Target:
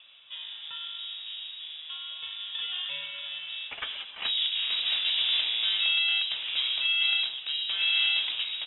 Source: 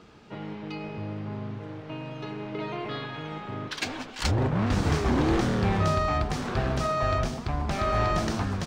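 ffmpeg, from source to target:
-af "equalizer=f=250:t=o:w=1:g=-10,equalizer=f=500:t=o:w=1:g=11,equalizer=f=1000:t=o:w=1:g=7,lowpass=f=3300:t=q:w=0.5098,lowpass=f=3300:t=q:w=0.6013,lowpass=f=3300:t=q:w=0.9,lowpass=f=3300:t=q:w=2.563,afreqshift=-3900,volume=0.501"

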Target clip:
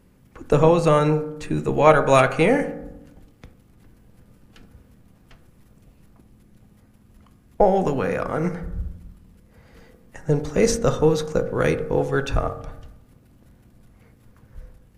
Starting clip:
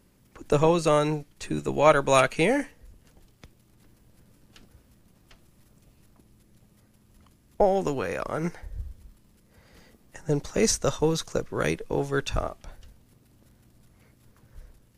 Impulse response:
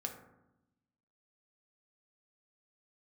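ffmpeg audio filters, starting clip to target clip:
-filter_complex "[0:a]asplit=2[s0][s1];[1:a]atrim=start_sample=2205,lowpass=3300,lowshelf=f=150:g=5[s2];[s1][s2]afir=irnorm=-1:irlink=0,volume=1.12[s3];[s0][s3]amix=inputs=2:normalize=0,volume=0.891"

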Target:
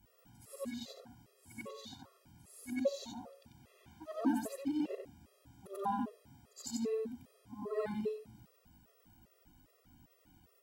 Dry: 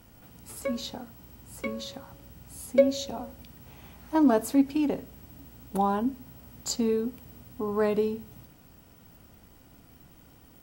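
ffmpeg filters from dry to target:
-af "afftfilt=real='re':imag='-im':win_size=8192:overlap=0.75,afftfilt=real='re*gt(sin(2*PI*2.5*pts/sr)*(1-2*mod(floor(b*sr/1024/350),2)),0)':imag='im*gt(sin(2*PI*2.5*pts/sr)*(1-2*mod(floor(b*sr/1024/350),2)),0)':win_size=1024:overlap=0.75,volume=0.668"

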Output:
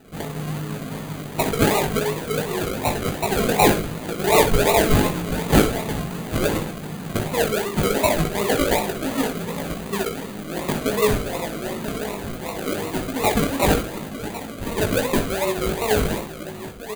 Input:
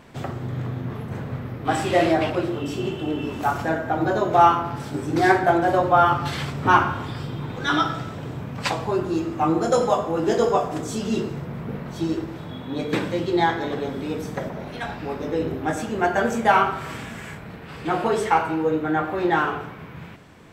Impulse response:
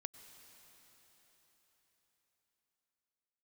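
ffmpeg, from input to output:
-filter_complex "[0:a]asetrate=53361,aresample=44100,aecho=1:1:4.5:0.38,asplit=2[s0][s1];[s1]aecho=0:1:989:0.251[s2];[s0][s2]amix=inputs=2:normalize=0,acrusher=samples=39:mix=1:aa=0.000001:lfo=1:lforange=23.4:lforate=2.7,highshelf=f=8900:g=5.5,bandreject=f=5400:w=5.5,asplit=2[s3][s4];[s4]aecho=0:1:19|64:0.531|0.299[s5];[s3][s5]amix=inputs=2:normalize=0,volume=0.841"

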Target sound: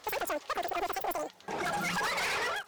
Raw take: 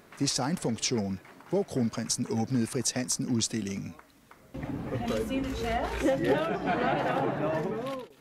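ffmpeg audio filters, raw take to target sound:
-af "aemphasis=mode=reproduction:type=50fm,asetrate=135387,aresample=44100,asoftclip=type=hard:threshold=0.0355"

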